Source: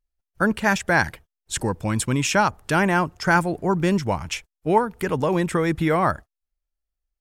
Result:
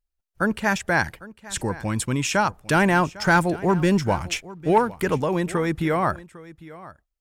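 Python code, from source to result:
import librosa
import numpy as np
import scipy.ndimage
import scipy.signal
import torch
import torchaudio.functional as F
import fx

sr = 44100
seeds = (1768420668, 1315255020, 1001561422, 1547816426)

y = fx.leveller(x, sr, passes=1, at=(2.62, 5.18))
y = y + 10.0 ** (-19.0 / 20.0) * np.pad(y, (int(802 * sr / 1000.0), 0))[:len(y)]
y = y * librosa.db_to_amplitude(-2.0)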